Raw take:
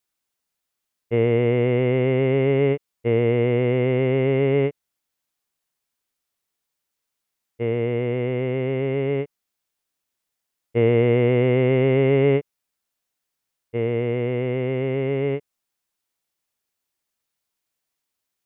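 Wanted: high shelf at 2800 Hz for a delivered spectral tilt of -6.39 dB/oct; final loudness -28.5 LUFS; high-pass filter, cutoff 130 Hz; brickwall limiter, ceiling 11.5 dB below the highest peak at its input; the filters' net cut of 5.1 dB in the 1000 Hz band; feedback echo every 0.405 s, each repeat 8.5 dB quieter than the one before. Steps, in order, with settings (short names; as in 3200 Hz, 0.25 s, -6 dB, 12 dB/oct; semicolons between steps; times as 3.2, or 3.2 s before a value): HPF 130 Hz; bell 1000 Hz -8.5 dB; high shelf 2800 Hz +6.5 dB; limiter -20 dBFS; feedback echo 0.405 s, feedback 38%, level -8.5 dB; gain +1.5 dB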